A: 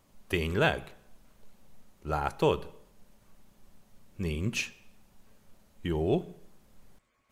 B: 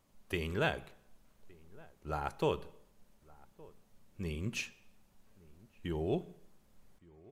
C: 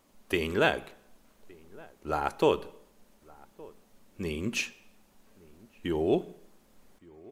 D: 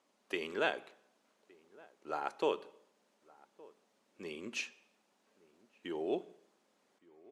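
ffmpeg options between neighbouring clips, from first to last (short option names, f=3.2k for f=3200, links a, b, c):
-filter_complex "[0:a]asplit=2[a][b];[b]adelay=1166,volume=-23dB,highshelf=f=4k:g=-26.2[c];[a][c]amix=inputs=2:normalize=0,volume=-6.5dB"
-af "lowshelf=f=190:t=q:w=1.5:g=-6.5,volume=7.5dB"
-af "highpass=320,lowpass=7.6k,volume=-7.5dB"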